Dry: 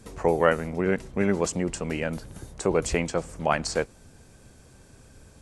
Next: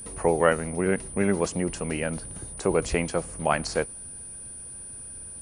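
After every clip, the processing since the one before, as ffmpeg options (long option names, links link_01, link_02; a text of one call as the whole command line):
ffmpeg -i in.wav -filter_complex "[0:a]aeval=exprs='val(0)+0.0282*sin(2*PI*9400*n/s)':channel_layout=same,acrossover=split=6900[link_01][link_02];[link_02]acompressor=threshold=-46dB:ratio=4:attack=1:release=60[link_03];[link_01][link_03]amix=inputs=2:normalize=0" out.wav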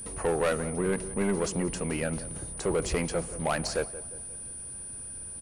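ffmpeg -i in.wav -filter_complex "[0:a]asoftclip=type=tanh:threshold=-20.5dB,asplit=2[link_01][link_02];[link_02]adelay=177,lowpass=frequency=1400:poles=1,volume=-14dB,asplit=2[link_03][link_04];[link_04]adelay=177,lowpass=frequency=1400:poles=1,volume=0.49,asplit=2[link_05][link_06];[link_06]adelay=177,lowpass=frequency=1400:poles=1,volume=0.49,asplit=2[link_07][link_08];[link_08]adelay=177,lowpass=frequency=1400:poles=1,volume=0.49,asplit=2[link_09][link_10];[link_10]adelay=177,lowpass=frequency=1400:poles=1,volume=0.49[link_11];[link_01][link_03][link_05][link_07][link_09][link_11]amix=inputs=6:normalize=0" out.wav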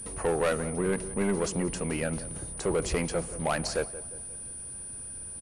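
ffmpeg -i in.wav -af "aresample=32000,aresample=44100" out.wav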